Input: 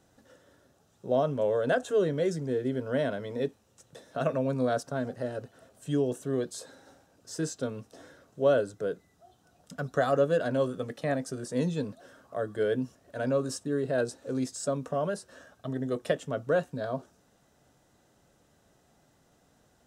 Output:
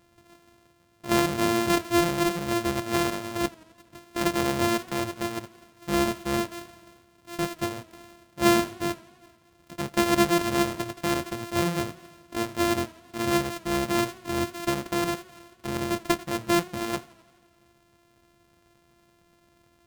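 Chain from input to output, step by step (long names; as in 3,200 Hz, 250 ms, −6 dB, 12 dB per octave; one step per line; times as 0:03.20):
samples sorted by size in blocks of 128 samples
feedback echo with a swinging delay time 86 ms, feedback 69%, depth 99 cents, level −23.5 dB
level +3 dB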